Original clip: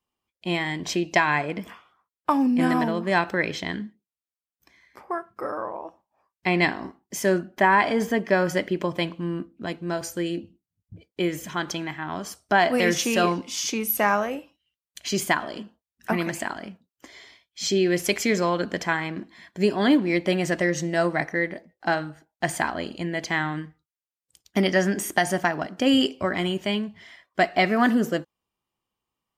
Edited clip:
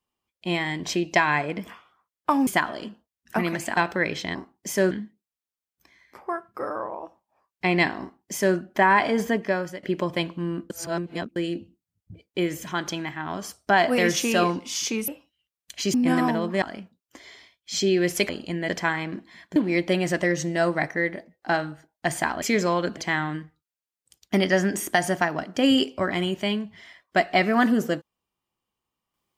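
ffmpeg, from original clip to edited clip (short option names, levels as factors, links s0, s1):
-filter_complex "[0:a]asplit=16[s0][s1][s2][s3][s4][s5][s6][s7][s8][s9][s10][s11][s12][s13][s14][s15];[s0]atrim=end=2.472[s16];[s1]atrim=start=15.208:end=16.512[s17];[s2]atrim=start=3.148:end=3.732[s18];[s3]atrim=start=6.818:end=7.382[s19];[s4]atrim=start=3.728:end=8.65,asetpts=PTS-STARTPTS,afade=t=out:st=4.412:d=0.51:silence=0.105925[s20];[s5]atrim=start=8.65:end=9.522,asetpts=PTS-STARTPTS,afade=t=in:d=0.004:c=hsin:silence=0.105925[s21];[s6]atrim=start=9.518:end=10.182,asetpts=PTS-STARTPTS,areverse[s22];[s7]atrim=start=10.178:end=13.902[s23];[s8]atrim=start=14.348:end=15.212[s24];[s9]atrim=start=2.468:end=3.152[s25];[s10]atrim=start=16.508:end=18.182[s26];[s11]atrim=start=22.798:end=23.202[s27];[s12]atrim=start=18.728:end=19.602[s28];[s13]atrim=start=19.938:end=22.802[s29];[s14]atrim=start=18.178:end=18.732[s30];[s15]atrim=start=23.198[s31];[s16][s17]acrossfade=d=0.004:c1=hsin:c2=hsin[s32];[s32][s18]acrossfade=d=0.004:c1=hsin:c2=hsin[s33];[s33][s19]acrossfade=d=0.004:c1=hsin:c2=hsin[s34];[s20][s21]concat=n=2:v=0:a=1[s35];[s34][s35]acrossfade=d=0.004:c1=hsin:c2=hsin[s36];[s36][s22]acrossfade=d=0.004:c1=hsin:c2=hsin[s37];[s37][s23]acrossfade=d=0.004:c1=hsin:c2=hsin[s38];[s38][s24]acrossfade=d=0.004:c1=hsin:c2=hsin[s39];[s39][s25]acrossfade=d=0.004:c1=hsin:c2=hsin[s40];[s40][s26]acrossfade=d=0.004:c1=hsin:c2=hsin[s41];[s41][s27]acrossfade=d=0.004:c1=hsin:c2=hsin[s42];[s42][s28]acrossfade=d=0.004:c1=hsin:c2=hsin[s43];[s43][s29]acrossfade=d=0.004:c1=hsin:c2=hsin[s44];[s44][s30]acrossfade=d=0.004:c1=hsin:c2=hsin[s45];[s45][s31]acrossfade=d=0.004:c1=hsin:c2=hsin"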